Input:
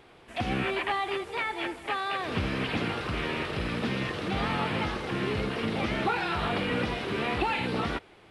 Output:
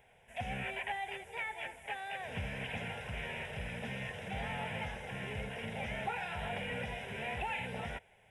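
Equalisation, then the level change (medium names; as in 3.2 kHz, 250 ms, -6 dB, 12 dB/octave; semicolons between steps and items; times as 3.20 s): treble shelf 5.1 kHz +6 dB; static phaser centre 1.2 kHz, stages 6; -7.0 dB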